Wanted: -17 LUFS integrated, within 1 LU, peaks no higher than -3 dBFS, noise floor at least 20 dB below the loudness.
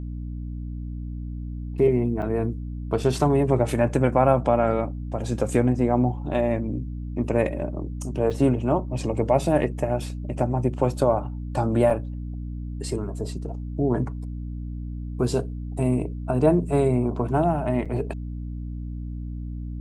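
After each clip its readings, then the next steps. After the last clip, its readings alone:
dropouts 4; longest dropout 6.0 ms; hum 60 Hz; harmonics up to 300 Hz; hum level -30 dBFS; loudness -25.0 LUFS; peak -5.5 dBFS; loudness target -17.0 LUFS
-> interpolate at 2.22/8.3/11.9/17.85, 6 ms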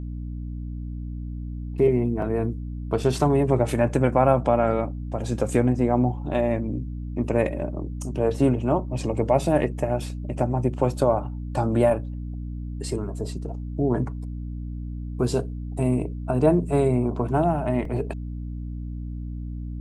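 dropouts 0; hum 60 Hz; harmonics up to 300 Hz; hum level -30 dBFS
-> de-hum 60 Hz, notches 5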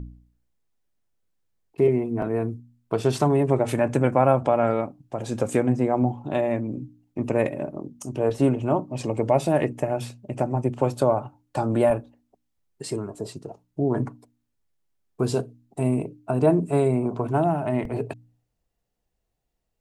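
hum none; loudness -24.5 LUFS; peak -6.0 dBFS; loudness target -17.0 LUFS
-> gain +7.5 dB; limiter -3 dBFS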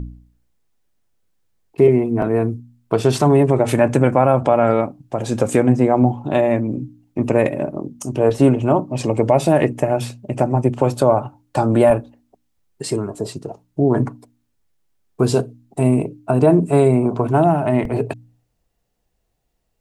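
loudness -17.5 LUFS; peak -3.0 dBFS; noise floor -69 dBFS

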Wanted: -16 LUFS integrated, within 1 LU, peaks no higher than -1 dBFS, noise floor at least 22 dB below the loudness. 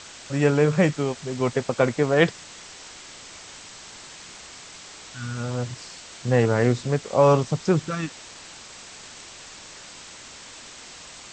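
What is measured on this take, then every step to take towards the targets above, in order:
noise floor -43 dBFS; noise floor target -45 dBFS; loudness -23.0 LUFS; peak -5.0 dBFS; loudness target -16.0 LUFS
-> denoiser 6 dB, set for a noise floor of -43 dBFS; gain +7 dB; limiter -1 dBFS

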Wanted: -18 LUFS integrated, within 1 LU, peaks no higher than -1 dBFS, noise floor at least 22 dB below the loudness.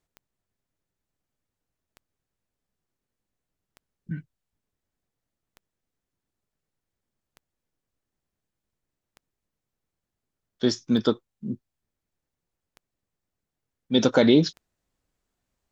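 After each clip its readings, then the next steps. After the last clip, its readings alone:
clicks 9; loudness -23.5 LUFS; peak -6.0 dBFS; loudness target -18.0 LUFS
-> de-click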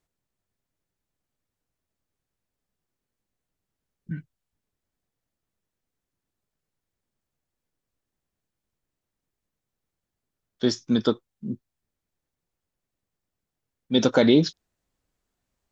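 clicks 0; loudness -22.5 LUFS; peak -6.0 dBFS; loudness target -18.0 LUFS
-> gain +4.5 dB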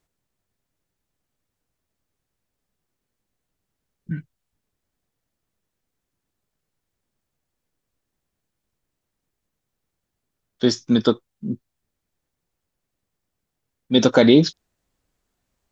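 loudness -18.0 LUFS; peak -1.5 dBFS; noise floor -81 dBFS

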